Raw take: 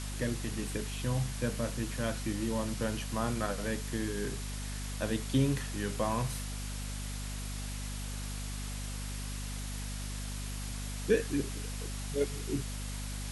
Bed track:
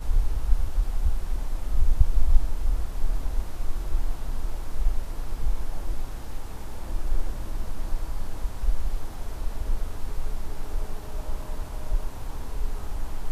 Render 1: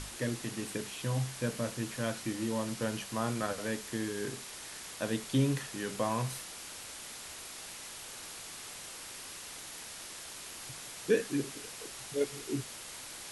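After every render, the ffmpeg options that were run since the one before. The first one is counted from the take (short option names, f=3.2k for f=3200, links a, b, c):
-af "bandreject=f=50:t=h:w=6,bandreject=f=100:t=h:w=6,bandreject=f=150:t=h:w=6,bandreject=f=200:t=h:w=6,bandreject=f=250:t=h:w=6"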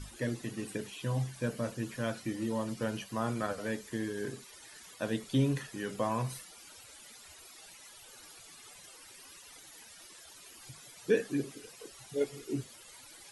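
-af "afftdn=nr=15:nf=-46"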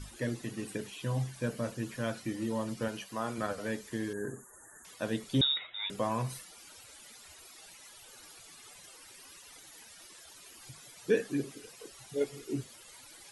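-filter_complex "[0:a]asettb=1/sr,asplit=3[a][b][c];[a]atrim=end=2.884[d];[b]atrim=start=2.88:end=3.38,asetpts=PTS-STARTPTS,afade=t=in:d=0.004:c=qsin,afade=t=out:st=0.496:d=0.004:c=qsin,lowshelf=f=170:g=-12[e];[c]atrim=start=3.376[f];[d][e]acrossfade=d=0.004:c1=hsin:c2=qsin[g];[g][f]acrossfade=d=0.004:c1=qsin:c2=hsin,asettb=1/sr,asplit=3[h][i][j];[h]atrim=end=4.134[k];[i]atrim=start=4.13:end=4.85,asetpts=PTS-STARTPTS,afade=t=in:d=0.004:c=qsin,afade=t=out:st=0.716:d=0.004:c=qsin,asuperstop=centerf=3500:order=20:qfactor=0.75[l];[j]atrim=start=4.846[m];[k][l]acrossfade=d=0.004:c1=hsin:c2=qsin[n];[n][m]acrossfade=d=0.004:c1=qsin:c2=hsin,asettb=1/sr,asplit=3[o][p][q];[o]atrim=end=5.414[r];[p]atrim=start=5.41:end=5.9,asetpts=PTS-STARTPTS,afade=t=in:d=0.004:c=qsin,afade=t=out:st=0.486:d=0.004:c=qsin,lowpass=f=3.3k:t=q:w=0.5098,lowpass=f=3.3k:t=q:w=0.6013,lowpass=f=3.3k:t=q:w=0.9,lowpass=f=3.3k:t=q:w=2.563,afreqshift=-3900[s];[q]atrim=start=5.896[t];[r][s]acrossfade=d=0.004:c1=hsin:c2=qsin[u];[u][t]acrossfade=d=0.004:c1=qsin:c2=hsin"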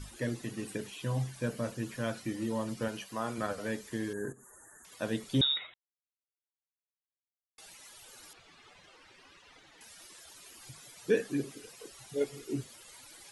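-filter_complex "[0:a]asettb=1/sr,asplit=3[a][b][c];[a]atrim=end=4.324[d];[b]atrim=start=4.32:end=4.92,asetpts=PTS-STARTPTS,afade=t=in:d=0.004:c=qsin,afade=t=out:st=0.596:d=0.004:c=qsin,acompressor=threshold=-51dB:ratio=12:attack=3.2:release=140:knee=1:detection=peak[e];[c]atrim=start=4.916[f];[d][e]acrossfade=d=0.004:c1=hsin:c2=qsin[g];[g][f]acrossfade=d=0.004:c1=qsin:c2=hsin,asettb=1/sr,asplit=3[h][i][j];[h]atrim=end=8.334[k];[i]atrim=start=8.33:end=9.81,asetpts=PTS-STARTPTS,afade=t=in:d=0.004:c=qsin,afade=t=out:st=1.476:d=0.004:c=qsin,lowpass=3.3k[l];[j]atrim=start=9.806[m];[k][l]acrossfade=d=0.004:c1=hsin:c2=qsin[n];[n][m]acrossfade=d=0.004:c1=qsin:c2=hsin,asplit=3[o][p][q];[o]atrim=end=5.74,asetpts=PTS-STARTPTS,afade=t=out:st=5.736:d=0.004:c=hsin[r];[p]atrim=start=5.74:end=7.58,asetpts=PTS-STARTPTS,volume=0[s];[q]atrim=start=7.58,asetpts=PTS-STARTPTS,afade=t=in:d=0.004:c=hsin[t];[r][s][t]concat=n=3:v=0:a=1"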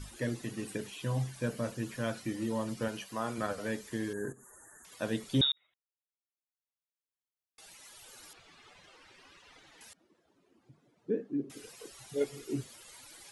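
-filter_complex "[0:a]asettb=1/sr,asplit=3[a][b][c];[a]atrim=end=9.934[d];[b]atrim=start=9.93:end=11.5,asetpts=PTS-STARTPTS,afade=t=in:d=0.004:c=qsin,afade=t=out:st=1.566:d=0.004:c=qsin,bandpass=f=260:t=q:w=1.5[e];[c]atrim=start=11.496[f];[d][e]acrossfade=d=0.004:c1=hsin:c2=qsin[g];[g][f]acrossfade=d=0.004:c1=qsin:c2=hsin,asplit=2[h][i];[h]atrim=end=5.52,asetpts=PTS-STARTPTS,afade=t=out:st=5.516:d=0.004:c=hsin[j];[i]atrim=start=5.52,asetpts=PTS-STARTPTS,afade=t=in:d=2.55[k];[j][k]concat=n=2:v=0:a=1"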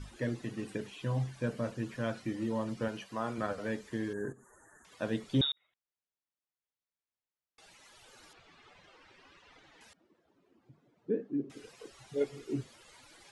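-af "lowpass=8.8k,highshelf=f=4.1k:g=-8.5"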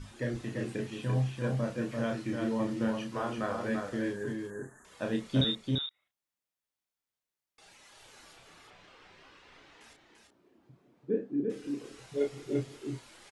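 -filter_complex "[0:a]asplit=2[a][b];[b]adelay=31,volume=-4.5dB[c];[a][c]amix=inputs=2:normalize=0,aecho=1:1:341:0.631"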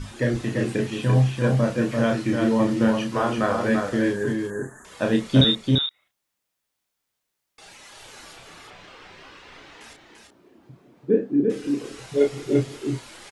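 -af "volume=11dB"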